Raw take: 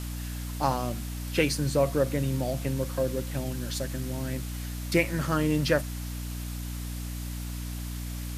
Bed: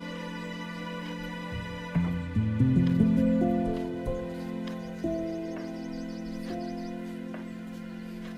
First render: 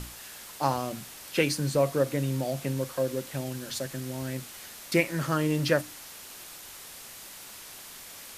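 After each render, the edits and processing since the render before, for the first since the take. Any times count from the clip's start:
mains-hum notches 60/120/180/240/300 Hz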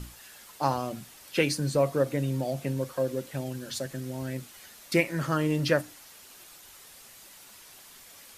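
broadband denoise 7 dB, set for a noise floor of −45 dBFS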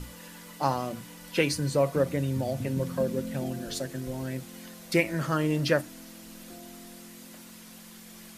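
mix in bed −12 dB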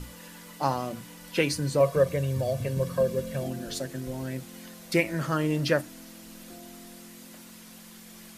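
0:01.80–0:03.47: comb filter 1.8 ms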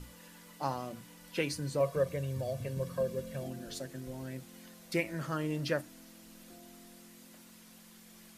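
level −8 dB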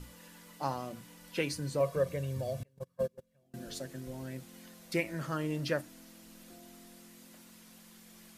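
0:02.63–0:03.54: noise gate −32 dBFS, range −31 dB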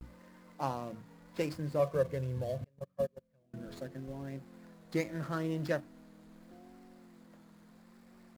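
running median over 15 samples
pitch vibrato 0.77 Hz 88 cents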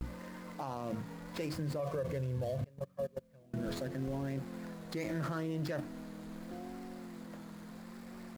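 in parallel at +1 dB: compressor whose output falls as the input rises −43 dBFS, ratio −1
on the sum: brickwall limiter −29 dBFS, peak gain reduction 11 dB

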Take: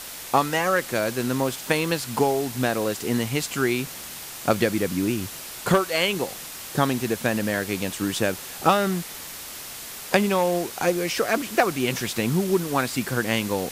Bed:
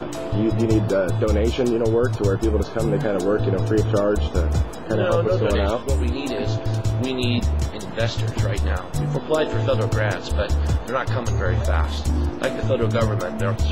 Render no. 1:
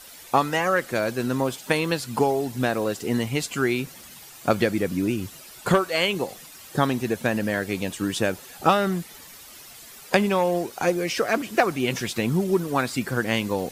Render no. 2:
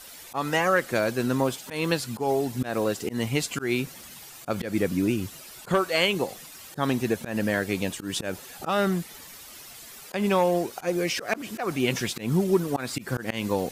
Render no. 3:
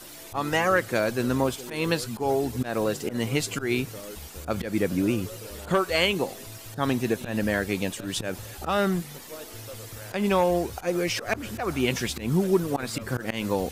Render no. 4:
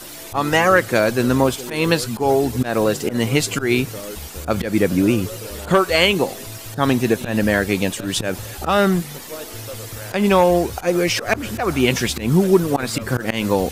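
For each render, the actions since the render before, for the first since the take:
broadband denoise 11 dB, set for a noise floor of −38 dBFS
volume swells 146 ms
mix in bed −21.5 dB
level +8 dB; brickwall limiter −2 dBFS, peak gain reduction 1 dB

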